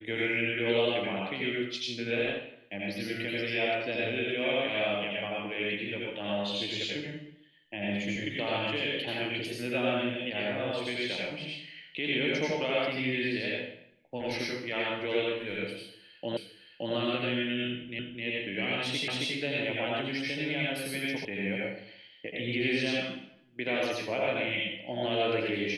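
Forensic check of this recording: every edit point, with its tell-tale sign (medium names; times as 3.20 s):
16.37 s: repeat of the last 0.57 s
17.99 s: repeat of the last 0.26 s
19.08 s: repeat of the last 0.27 s
21.25 s: sound stops dead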